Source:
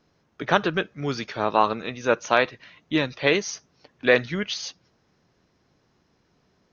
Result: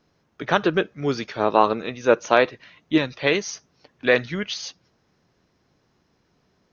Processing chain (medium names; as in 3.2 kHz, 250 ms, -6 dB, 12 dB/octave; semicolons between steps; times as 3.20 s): 0.59–2.98 s: dynamic bell 400 Hz, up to +6 dB, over -33 dBFS, Q 0.8